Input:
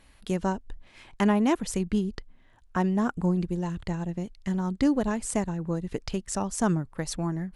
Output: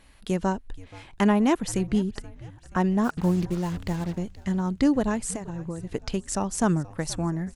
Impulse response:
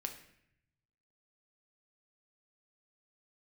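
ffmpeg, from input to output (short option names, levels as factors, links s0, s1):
-filter_complex "[0:a]asplit=3[s0][s1][s2];[s0]afade=t=out:st=3.03:d=0.02[s3];[s1]acrusher=bits=6:mix=0:aa=0.5,afade=t=in:st=3.03:d=0.02,afade=t=out:st=4.17:d=0.02[s4];[s2]afade=t=in:st=4.17:d=0.02[s5];[s3][s4][s5]amix=inputs=3:normalize=0,asettb=1/sr,asplit=3[s6][s7][s8];[s6]atrim=end=5.304[s9];[s7]atrim=start=5.3:end=5.95,asetpts=PTS-STARTPTS,afade=t=in:d=0.004:c=qsin,afade=t=out:st=0.646:d=0.004:c=qsin,acompressor=threshold=0.0282:ratio=10[s10];[s8]atrim=start=5.946[s11];[s9][s10]acrossfade=d=0.004:c1=hsin:c2=qsin[s12];[s12][s11]acrossfade=d=0.004:c1=qsin:c2=hsin,asplit=5[s13][s14][s15][s16][s17];[s14]adelay=477,afreqshift=-89,volume=0.1[s18];[s15]adelay=954,afreqshift=-178,volume=0.0531[s19];[s16]adelay=1431,afreqshift=-267,volume=0.0282[s20];[s17]adelay=1908,afreqshift=-356,volume=0.015[s21];[s13][s18][s19][s20][s21]amix=inputs=5:normalize=0,volume=1.26"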